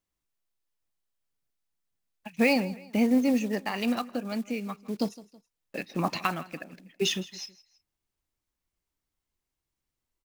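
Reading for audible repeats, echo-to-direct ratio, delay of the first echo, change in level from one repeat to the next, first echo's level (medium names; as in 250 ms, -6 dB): 2, -19.0 dB, 162 ms, -7.5 dB, -19.5 dB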